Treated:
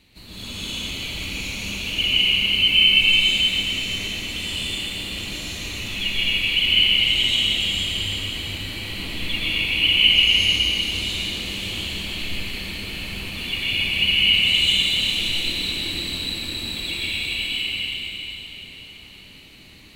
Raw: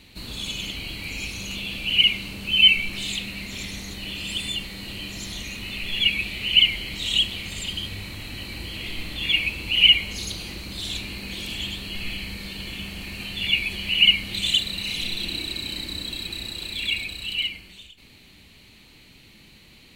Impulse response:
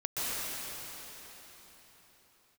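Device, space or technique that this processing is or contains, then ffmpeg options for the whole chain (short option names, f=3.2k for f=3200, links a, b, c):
cathedral: -filter_complex "[1:a]atrim=start_sample=2205[a];[0:a][a]afir=irnorm=-1:irlink=0,volume=-4.5dB"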